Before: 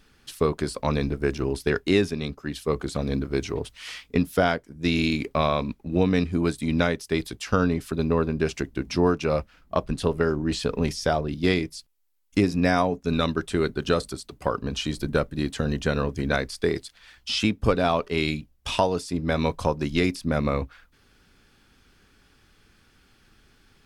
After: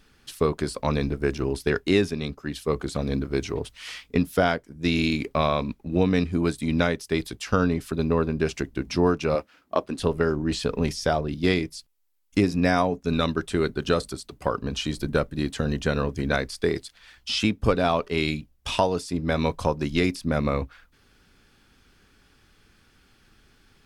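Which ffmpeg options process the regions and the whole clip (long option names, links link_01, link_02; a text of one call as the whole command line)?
ffmpeg -i in.wav -filter_complex "[0:a]asettb=1/sr,asplit=3[link_01][link_02][link_03];[link_01]atrim=end=9.354[link_04];[link_02]atrim=start=9.35:end=9.99,asetpts=PTS-STARTPTS,afade=type=in:duration=0.004:curve=qsin,afade=type=out:start_time=0.636:duration=0.004:curve=qsin,highpass=100,lowshelf=frequency=210:width_type=q:width=1.5:gain=-8[link_05];[link_03]atrim=start=9.986[link_06];[link_04][link_05]acrossfade=duration=0.004:curve1=hsin:curve2=qsin[link_07];[link_07][link_06]acrossfade=duration=0.004:curve1=qsin:curve2=hsin" out.wav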